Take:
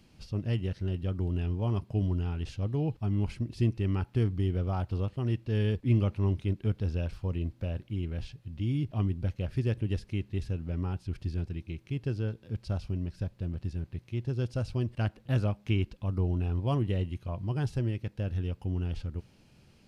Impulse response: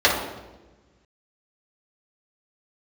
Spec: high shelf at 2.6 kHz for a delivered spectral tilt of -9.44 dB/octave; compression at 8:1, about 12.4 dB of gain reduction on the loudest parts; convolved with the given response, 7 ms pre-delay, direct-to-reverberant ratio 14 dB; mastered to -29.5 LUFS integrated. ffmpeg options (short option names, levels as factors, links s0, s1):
-filter_complex "[0:a]highshelf=f=2600:g=-6.5,acompressor=threshold=0.0224:ratio=8,asplit=2[s0][s1];[1:a]atrim=start_sample=2205,adelay=7[s2];[s1][s2]afir=irnorm=-1:irlink=0,volume=0.0158[s3];[s0][s3]amix=inputs=2:normalize=0,volume=3.16"